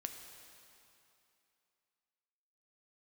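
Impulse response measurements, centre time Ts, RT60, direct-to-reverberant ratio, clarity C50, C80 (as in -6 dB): 56 ms, 2.8 s, 4.5 dB, 6.0 dB, 6.5 dB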